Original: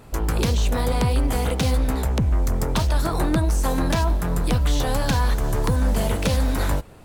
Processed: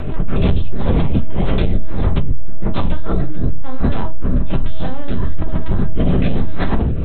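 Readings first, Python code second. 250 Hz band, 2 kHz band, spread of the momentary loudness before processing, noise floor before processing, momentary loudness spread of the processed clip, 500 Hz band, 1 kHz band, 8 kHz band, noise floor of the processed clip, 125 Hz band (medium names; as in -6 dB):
+4.5 dB, -2.5 dB, 2 LU, -36 dBFS, 7 LU, +1.0 dB, -2.5 dB, under -40 dB, -16 dBFS, +3.0 dB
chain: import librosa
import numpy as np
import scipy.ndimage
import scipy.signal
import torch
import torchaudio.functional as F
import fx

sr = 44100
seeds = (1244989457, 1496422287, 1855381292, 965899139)

y = fx.lpc_vocoder(x, sr, seeds[0], excitation='pitch_kept', order=8)
y = fx.room_shoebox(y, sr, seeds[1], volume_m3=190.0, walls='furnished', distance_m=1.2)
y = fx.rotary_switch(y, sr, hz=5.5, then_hz=1.1, switch_at_s=0.99)
y = fx.low_shelf(y, sr, hz=250.0, db=6.0)
y = fx.env_flatten(y, sr, amount_pct=70)
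y = y * 10.0 ** (-11.5 / 20.0)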